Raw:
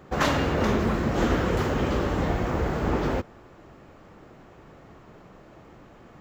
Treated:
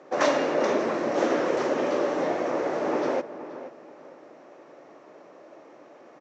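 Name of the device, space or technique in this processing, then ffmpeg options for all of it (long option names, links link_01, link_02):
television speaker: -filter_complex "[0:a]bass=frequency=250:gain=-6,treble=frequency=4000:gain=-5,highpass=frequency=190:width=0.5412,highpass=frequency=190:width=1.3066,equalizer=frequency=200:width_type=q:width=4:gain=-9,equalizer=frequency=310:width_type=q:width=4:gain=3,equalizer=frequency=580:width_type=q:width=4:gain=8,equalizer=frequency=1400:width_type=q:width=4:gain=-3,equalizer=frequency=3100:width_type=q:width=4:gain=-4,equalizer=frequency=5800:width_type=q:width=4:gain=8,lowpass=frequency=7500:width=0.5412,lowpass=frequency=7500:width=1.3066,asplit=2[link_01][link_02];[link_02]adelay=477,lowpass=frequency=2200:poles=1,volume=-12.5dB,asplit=2[link_03][link_04];[link_04]adelay=477,lowpass=frequency=2200:poles=1,volume=0.3,asplit=2[link_05][link_06];[link_06]adelay=477,lowpass=frequency=2200:poles=1,volume=0.3[link_07];[link_01][link_03][link_05][link_07]amix=inputs=4:normalize=0"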